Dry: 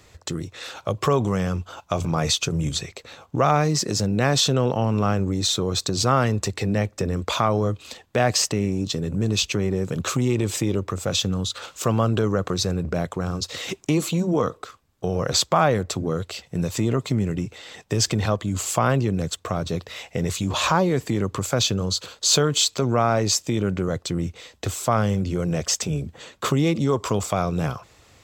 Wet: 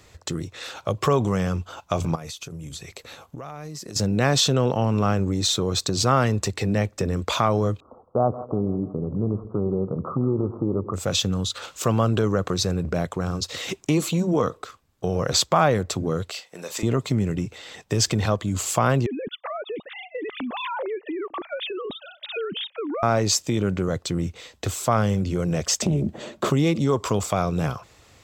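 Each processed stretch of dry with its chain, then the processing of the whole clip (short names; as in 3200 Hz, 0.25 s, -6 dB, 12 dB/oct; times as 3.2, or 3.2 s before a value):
2.15–3.96 bell 12000 Hz +10.5 dB 0.62 oct + compressor 8:1, threshold -33 dBFS
7.8–10.94 steep low-pass 1300 Hz 96 dB/oct + low shelf 98 Hz -6 dB + split-band echo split 460 Hz, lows 0.11 s, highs 0.163 s, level -15 dB
16.3–16.83 HPF 550 Hz + doubler 39 ms -11.5 dB
19.06–23.03 sine-wave speech + compressor 4:1, threshold -28 dBFS
25.82–26.5 small resonant body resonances 220/340/600 Hz, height 15 dB, ringing for 35 ms + compressor 3:1, threshold -19 dBFS + Doppler distortion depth 0.18 ms
whole clip: dry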